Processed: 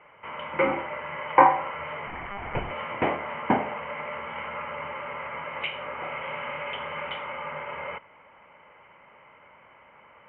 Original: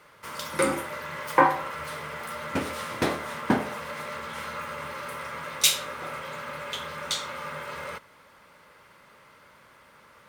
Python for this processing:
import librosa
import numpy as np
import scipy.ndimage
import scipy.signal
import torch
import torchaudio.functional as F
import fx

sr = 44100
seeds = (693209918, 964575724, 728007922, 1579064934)

y = fx.lpc_monotone(x, sr, seeds[0], pitch_hz=200.0, order=8, at=(2.07, 2.71))
y = scipy.signal.sosfilt(scipy.signal.cheby1(6, 9, 3100.0, 'lowpass', fs=sr, output='sos'), y)
y = fx.band_squash(y, sr, depth_pct=100, at=(5.56, 7.1))
y = y * librosa.db_to_amplitude(6.0)